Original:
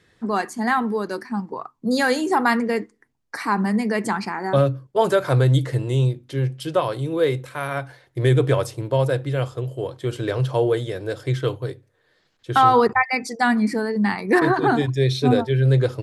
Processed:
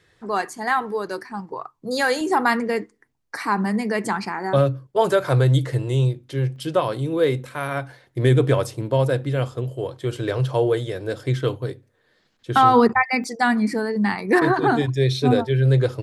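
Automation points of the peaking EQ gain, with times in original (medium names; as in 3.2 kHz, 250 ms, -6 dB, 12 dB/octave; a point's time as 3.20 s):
peaking EQ 230 Hz 0.4 oct
-13.5 dB
from 2.21 s -3 dB
from 6.56 s +8.5 dB
from 9.70 s -1 dB
from 11.08 s +7.5 dB
from 13.24 s -1 dB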